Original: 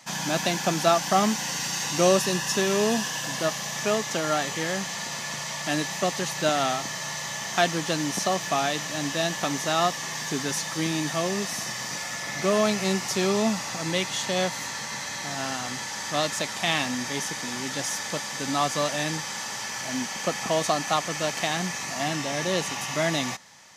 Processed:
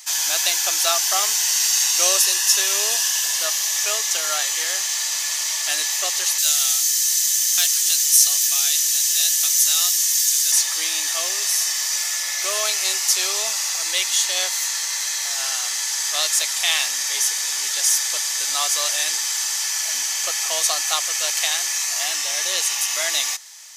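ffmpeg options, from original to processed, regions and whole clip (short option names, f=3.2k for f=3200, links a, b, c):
-filter_complex "[0:a]asettb=1/sr,asplit=3[a][b][c];[a]atrim=end=6.384[d];[b]atrim=start=6.38:end=10.52,asetpts=PTS-STARTPTS,afade=t=in:d=0.004:c=qsin,afade=t=out:st=4.136:d=0.004:c=qsin,aderivative,acontrast=30,asoftclip=type=hard:threshold=-16dB[e];[c]atrim=start=10.516[f];[d][e]acrossfade=d=0.004:c1=hsin:c2=qsin[g];[g][f]acrossfade=d=0.004:c1=qsin:c2=hsin,highpass=f=380:w=0.5412,highpass=f=380:w=1.3066,aderivative,acontrast=80,volume=7dB"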